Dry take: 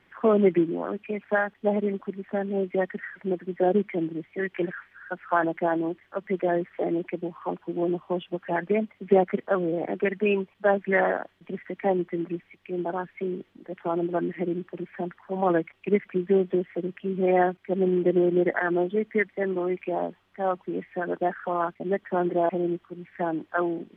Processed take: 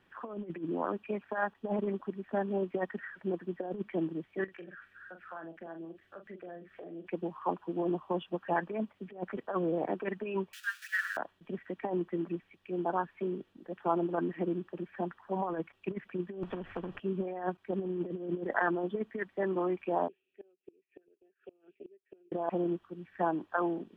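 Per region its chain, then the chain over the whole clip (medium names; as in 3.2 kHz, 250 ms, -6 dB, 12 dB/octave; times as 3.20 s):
4.44–7.07 s: peaking EQ 930 Hz -9.5 dB 0.37 oct + compression 4:1, threshold -41 dBFS + doubling 42 ms -8 dB
10.53–11.17 s: jump at every zero crossing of -35 dBFS + steep high-pass 1.4 kHz 72 dB/octave
16.43–17.00 s: tilt EQ -4 dB/octave + compression 5:1, threshold -25 dBFS + spectrum-flattening compressor 2:1
20.08–22.32 s: two resonant band-passes 1 kHz, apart 2.7 oct + inverted gate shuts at -33 dBFS, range -26 dB
whole clip: band-stop 2.1 kHz, Q 5.7; compressor with a negative ratio -25 dBFS, ratio -0.5; dynamic bell 1 kHz, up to +8 dB, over -45 dBFS, Q 1.9; trim -7 dB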